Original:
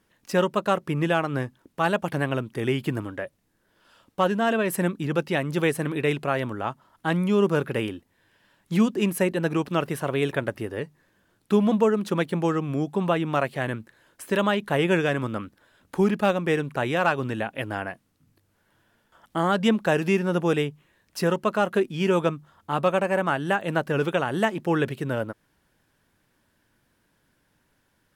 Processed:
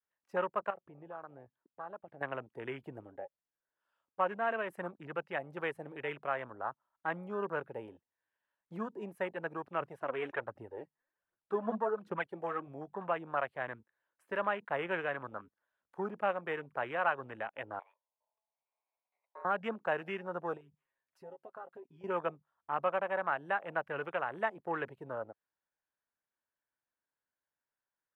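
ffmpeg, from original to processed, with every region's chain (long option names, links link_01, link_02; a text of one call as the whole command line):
ffmpeg -i in.wav -filter_complex "[0:a]asettb=1/sr,asplit=3[link_01][link_02][link_03];[link_01]atrim=end=0.704[link_04];[link_02]atrim=start=0.7:end=2.21,asetpts=PTS-STARTPTS,afade=type=in:duration=0.004:curve=qsin,afade=type=out:start_time=1.506:duration=0.004:curve=qsin,lowpass=3600,acompressor=threshold=-39dB:ratio=2:attack=3.2:release=140:knee=1:detection=peak[link_05];[link_03]atrim=start=2.206[link_06];[link_04][link_05]acrossfade=duration=0.004:curve1=hsin:curve2=qsin[link_07];[link_07][link_06]acrossfade=duration=0.004:curve1=qsin:curve2=hsin,asettb=1/sr,asplit=3[link_08][link_09][link_10];[link_08]atrim=end=9.804[link_11];[link_09]atrim=start=9.8:end=12.67,asetpts=PTS-STARTPTS,afade=type=in:duration=0.004:curve=qsin,afade=type=out:start_time=2.866:duration=0.004:curve=qsin,highshelf=frequency=9700:gain=-5,aphaser=in_gain=1:out_gain=1:delay=4.8:decay=0.56:speed=1.3:type=triangular[link_12];[link_10]atrim=start=12.666[link_13];[link_11][link_12]acrossfade=duration=0.004:curve1=hsin:curve2=qsin[link_14];[link_14][link_13]acrossfade=duration=0.004:curve1=qsin:curve2=hsin,asettb=1/sr,asplit=3[link_15][link_16][link_17];[link_15]atrim=end=17.794[link_18];[link_16]atrim=start=17.79:end=19.45,asetpts=PTS-STARTPTS,afade=type=in:duration=0.004:curve=qsin,afade=type=out:start_time=1.656:duration=0.004:curve=qsin,acompressor=threshold=-34dB:ratio=2:attack=3.2:release=140:knee=1:detection=peak,asuperstop=centerf=690:order=8:qfactor=0.79,aeval=exprs='val(0)*sin(2*PI*760*n/s)':channel_layout=same[link_19];[link_17]atrim=start=19.446[link_20];[link_18][link_19]acrossfade=duration=0.004:curve1=hsin:curve2=qsin[link_21];[link_21][link_20]acrossfade=duration=0.004:curve1=qsin:curve2=hsin,asettb=1/sr,asplit=3[link_22][link_23][link_24];[link_22]atrim=end=20.574[link_25];[link_23]atrim=start=20.57:end=22.04,asetpts=PTS-STARTPTS,afade=type=in:duration=0.004:curve=qsin,afade=type=out:start_time=1.466:duration=0.004:curve=qsin,aecho=1:1:7.5:0.6,atrim=end_sample=64827,acompressor=threshold=-38dB:ratio=3:attack=3.2:release=140:knee=1:detection=peak[link_26];[link_24]atrim=start=22.036[link_27];[link_25][link_26]acrossfade=duration=0.004:curve1=hsin:curve2=qsin[link_28];[link_28][link_27]acrossfade=duration=0.004:curve1=qsin:curve2=hsin,adynamicequalizer=threshold=0.0282:dfrequency=300:dqfactor=0.81:tfrequency=300:tqfactor=0.81:attack=5:release=100:ratio=0.375:range=1.5:mode=cutabove:tftype=bell,afwtdn=0.0251,acrossover=split=520 2200:gain=0.158 1 0.251[link_29][link_30][link_31];[link_29][link_30][link_31]amix=inputs=3:normalize=0,volume=-6dB" out.wav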